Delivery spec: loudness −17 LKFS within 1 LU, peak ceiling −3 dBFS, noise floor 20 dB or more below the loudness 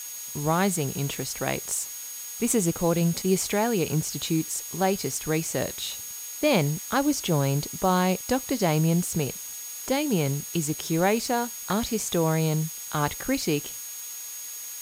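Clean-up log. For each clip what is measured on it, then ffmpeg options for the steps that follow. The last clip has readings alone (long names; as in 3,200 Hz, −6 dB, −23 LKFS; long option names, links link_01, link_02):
interfering tone 6,600 Hz; level of the tone −38 dBFS; background noise floor −38 dBFS; target noise floor −47 dBFS; integrated loudness −26.5 LKFS; sample peak −8.0 dBFS; target loudness −17.0 LKFS
→ -af "bandreject=frequency=6600:width=30"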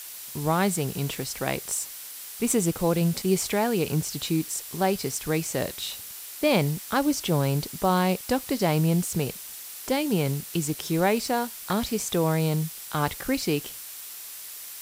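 interfering tone none found; background noise floor −40 dBFS; target noise floor −47 dBFS
→ -af "afftdn=noise_reduction=7:noise_floor=-40"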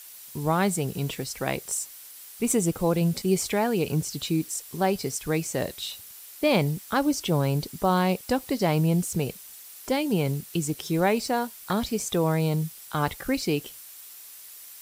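background noise floor −45 dBFS; target noise floor −47 dBFS
→ -af "afftdn=noise_reduction=6:noise_floor=-45"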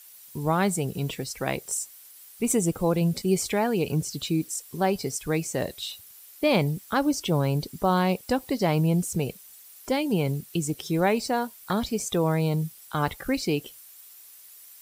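background noise floor −49 dBFS; integrated loudness −26.5 LKFS; sample peak −8.5 dBFS; target loudness −17.0 LKFS
→ -af "volume=9.5dB,alimiter=limit=-3dB:level=0:latency=1"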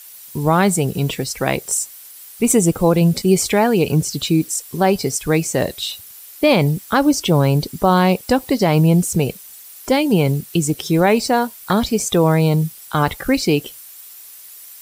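integrated loudness −17.5 LKFS; sample peak −3.0 dBFS; background noise floor −40 dBFS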